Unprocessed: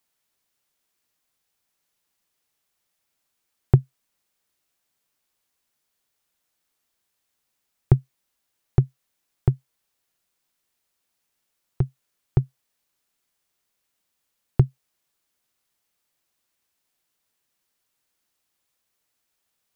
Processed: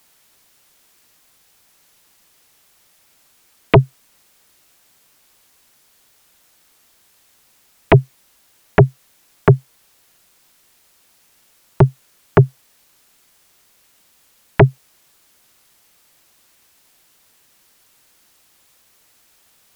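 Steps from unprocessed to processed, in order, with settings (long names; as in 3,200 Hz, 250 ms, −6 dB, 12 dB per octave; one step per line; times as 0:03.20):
phase distortion by the signal itself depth 0.32 ms
sine wavefolder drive 17 dB, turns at −3 dBFS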